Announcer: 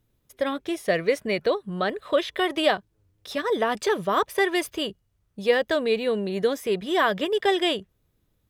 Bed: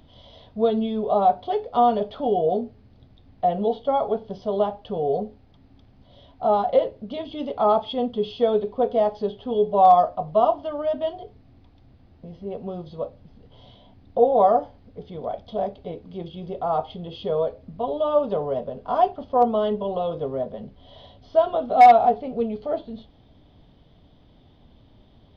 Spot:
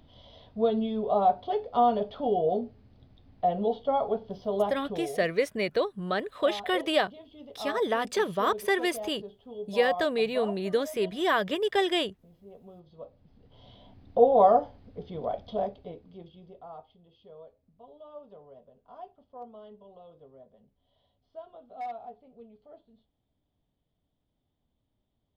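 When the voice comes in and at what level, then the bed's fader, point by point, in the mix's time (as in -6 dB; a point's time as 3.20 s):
4.30 s, -3.5 dB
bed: 4.88 s -4.5 dB
5.17 s -17.5 dB
12.84 s -17.5 dB
13.83 s -2 dB
15.49 s -2 dB
17.01 s -25.5 dB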